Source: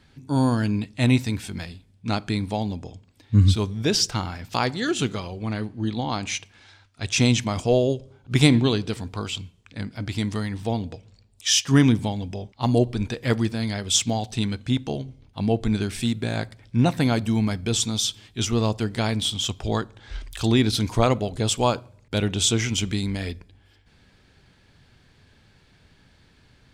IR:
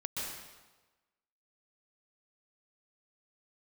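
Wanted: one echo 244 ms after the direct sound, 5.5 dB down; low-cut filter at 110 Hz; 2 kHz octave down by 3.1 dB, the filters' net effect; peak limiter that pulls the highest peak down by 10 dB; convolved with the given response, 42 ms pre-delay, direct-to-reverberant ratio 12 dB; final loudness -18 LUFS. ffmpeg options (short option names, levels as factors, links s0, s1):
-filter_complex "[0:a]highpass=110,equalizer=f=2000:t=o:g=-4,alimiter=limit=0.237:level=0:latency=1,aecho=1:1:244:0.531,asplit=2[s0][s1];[1:a]atrim=start_sample=2205,adelay=42[s2];[s1][s2]afir=irnorm=-1:irlink=0,volume=0.178[s3];[s0][s3]amix=inputs=2:normalize=0,volume=2.37"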